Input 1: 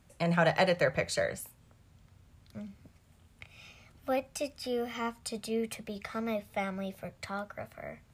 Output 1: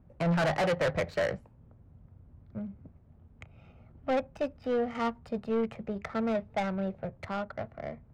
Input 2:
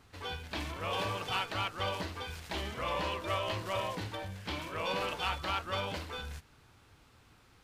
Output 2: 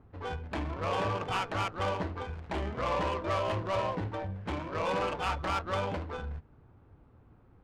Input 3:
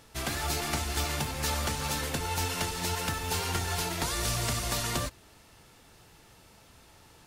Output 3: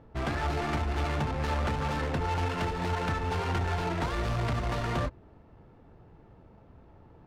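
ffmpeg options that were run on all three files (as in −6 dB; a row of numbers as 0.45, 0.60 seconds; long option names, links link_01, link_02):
-af "asoftclip=type=hard:threshold=-29dB,adynamicsmooth=sensitivity=4:basefreq=760,volume=5.5dB"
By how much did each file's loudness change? +1.0, +2.5, 0.0 LU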